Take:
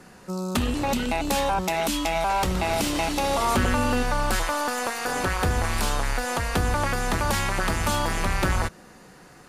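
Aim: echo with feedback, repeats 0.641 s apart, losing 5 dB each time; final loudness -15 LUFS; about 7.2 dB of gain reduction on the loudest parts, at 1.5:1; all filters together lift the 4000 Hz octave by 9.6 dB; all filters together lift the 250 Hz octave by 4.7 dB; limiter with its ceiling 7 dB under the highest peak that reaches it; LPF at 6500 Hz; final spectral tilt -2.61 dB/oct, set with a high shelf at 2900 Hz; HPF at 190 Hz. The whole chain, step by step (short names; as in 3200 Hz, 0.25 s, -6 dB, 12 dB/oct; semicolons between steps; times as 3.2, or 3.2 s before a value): HPF 190 Hz; LPF 6500 Hz; bell 250 Hz +7 dB; high shelf 2900 Hz +8.5 dB; bell 4000 Hz +6 dB; compressor 1.5:1, threshold -37 dBFS; limiter -19 dBFS; feedback echo 0.641 s, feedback 56%, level -5 dB; gain +13 dB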